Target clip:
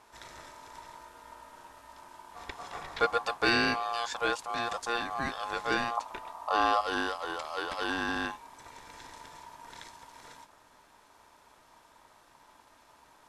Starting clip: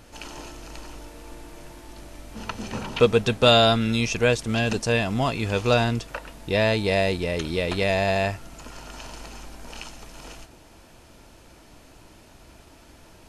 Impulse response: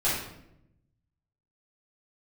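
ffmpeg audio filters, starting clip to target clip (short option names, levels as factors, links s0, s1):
-filter_complex "[0:a]asettb=1/sr,asplit=3[s0][s1][s2];[s0]atrim=end=5.974[s3];[s1]atrim=start=5.97:end=6.81,asetpts=PTS-STARTPTS,afade=t=in:d=0.004:c=qsin,afade=t=out:st=0.836:d=0.004:c=qsin,lowshelf=f=410:t=q:w=1.5:g=9[s4];[s2]atrim=start=6.806[s5];[s3][s4]acrossfade=d=0.004:c1=hsin:c2=qsin[s6];[s6][s5]acrossfade=d=0.004:c1=qsin:c2=hsin,aeval=exprs='val(0)*sin(2*PI*940*n/s)':c=same,volume=0.447"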